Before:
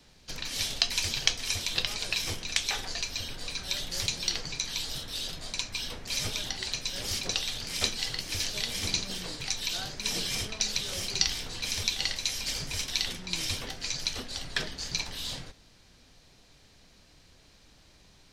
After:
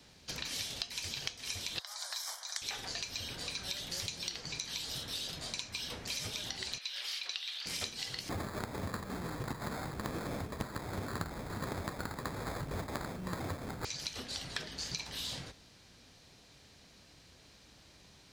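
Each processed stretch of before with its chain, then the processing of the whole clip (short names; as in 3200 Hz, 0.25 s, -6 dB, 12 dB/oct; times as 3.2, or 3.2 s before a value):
1.79–2.62 steep high-pass 490 Hz 48 dB/oct + fixed phaser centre 1100 Hz, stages 4
6.78–7.66 HPF 1300 Hz + resonant high shelf 5100 Hz -8 dB, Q 1.5
8.29–13.85 sample-rate reducer 2900 Hz + low shelf 340 Hz +9 dB
whole clip: HPF 60 Hz; compressor 6:1, threshold -36 dBFS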